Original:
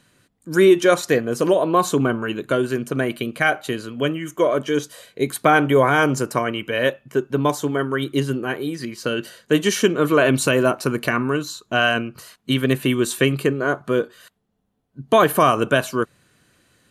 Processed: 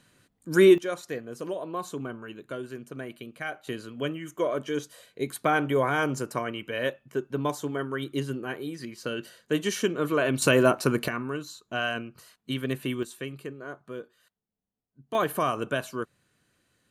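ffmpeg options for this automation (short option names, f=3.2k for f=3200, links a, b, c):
-af "asetnsamples=n=441:p=0,asendcmd='0.78 volume volume -16dB;3.67 volume volume -9dB;10.42 volume volume -2.5dB;11.08 volume volume -11dB;13.03 volume volume -18.5dB;15.15 volume volume -11dB',volume=-3.5dB"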